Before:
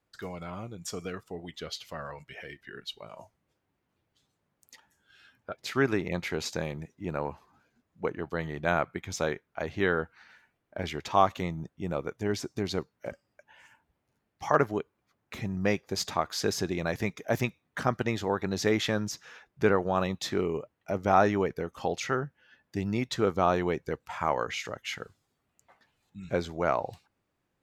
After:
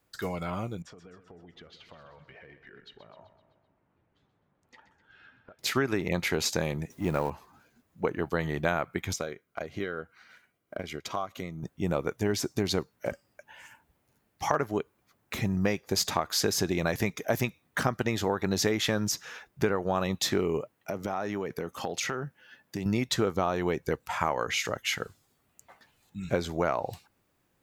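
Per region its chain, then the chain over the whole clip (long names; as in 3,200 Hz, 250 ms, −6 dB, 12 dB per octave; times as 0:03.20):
0:00.82–0:05.59: low-pass filter 1,800 Hz + downward compressor 10 to 1, threshold −53 dBFS + repeating echo 128 ms, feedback 57%, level −12 dB
0:06.90–0:07.30: mu-law and A-law mismatch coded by mu + notch filter 1,500 Hz, Q 17
0:09.13–0:11.63: transient designer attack +9 dB, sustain −5 dB + downward compressor 2.5 to 1, threshold −42 dBFS + notch comb filter 890 Hz
0:20.63–0:22.86: high-pass filter 110 Hz + downward compressor, threshold −34 dBFS
whole clip: high-shelf EQ 9,300 Hz +11 dB; downward compressor 10 to 1, threshold −28 dBFS; level +5.5 dB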